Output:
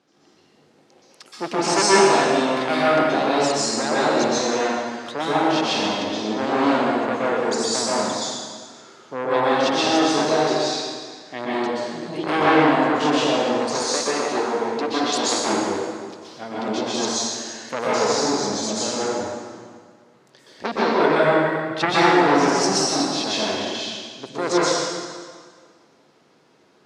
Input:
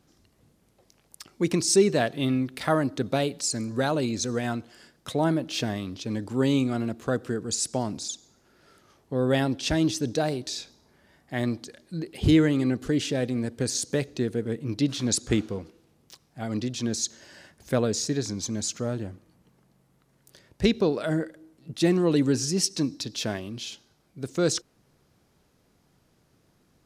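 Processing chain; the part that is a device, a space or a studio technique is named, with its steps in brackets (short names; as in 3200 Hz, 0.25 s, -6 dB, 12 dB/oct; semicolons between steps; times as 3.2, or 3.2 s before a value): public-address speaker with an overloaded transformer (core saturation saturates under 1700 Hz; BPF 300–5100 Hz); 20.98–21.9 ten-band EQ 125 Hz +9 dB, 1000 Hz +3 dB, 2000 Hz +10 dB; plate-style reverb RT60 1.8 s, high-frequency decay 0.85×, pre-delay 0.11 s, DRR -8.5 dB; 13.82–15.49 bell 140 Hz -11.5 dB 0.75 oct; gain +2.5 dB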